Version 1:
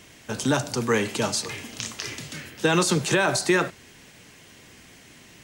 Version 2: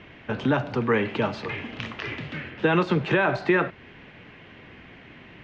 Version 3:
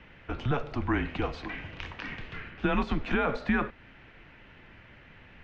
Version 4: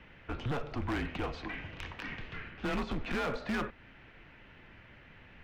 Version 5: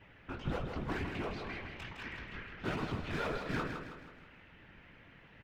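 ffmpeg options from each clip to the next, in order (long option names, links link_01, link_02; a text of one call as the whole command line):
ffmpeg -i in.wav -filter_complex "[0:a]lowpass=frequency=2800:width=0.5412,lowpass=frequency=2800:width=1.3066,asplit=2[link_01][link_02];[link_02]acompressor=threshold=-31dB:ratio=6,volume=1dB[link_03];[link_01][link_03]amix=inputs=2:normalize=0,volume=-2dB" out.wav
ffmpeg -i in.wav -af "afreqshift=-140,volume=-5.5dB" out.wav
ffmpeg -i in.wav -af "asoftclip=type=hard:threshold=-27.5dB,volume=-2.5dB" out.wav
ffmpeg -i in.wav -filter_complex "[0:a]flanger=delay=15.5:depth=6.7:speed=1.8,afftfilt=real='hypot(re,im)*cos(2*PI*random(0))':imag='hypot(re,im)*sin(2*PI*random(1))':win_size=512:overlap=0.75,asplit=2[link_01][link_02];[link_02]aecho=0:1:160|320|480|640|800:0.473|0.218|0.1|0.0461|0.0212[link_03];[link_01][link_03]amix=inputs=2:normalize=0,volume=5.5dB" out.wav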